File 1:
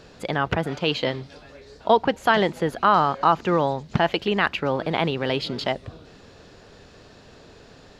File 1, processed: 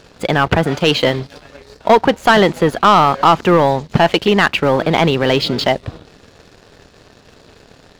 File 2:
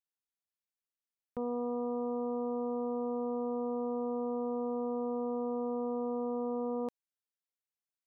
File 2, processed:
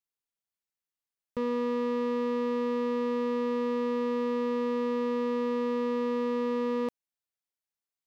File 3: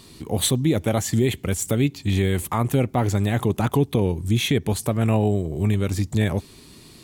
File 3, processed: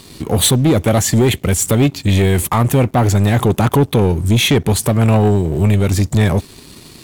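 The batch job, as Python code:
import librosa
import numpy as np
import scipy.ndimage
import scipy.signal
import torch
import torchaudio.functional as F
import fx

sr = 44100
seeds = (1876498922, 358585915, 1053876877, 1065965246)

y = fx.leveller(x, sr, passes=2)
y = y * librosa.db_to_amplitude(3.5)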